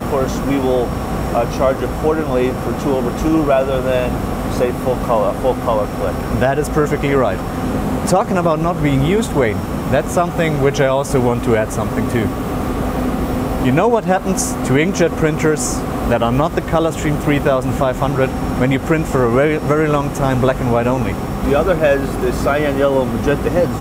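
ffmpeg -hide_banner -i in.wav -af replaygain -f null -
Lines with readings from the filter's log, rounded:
track_gain = -2.4 dB
track_peak = 0.504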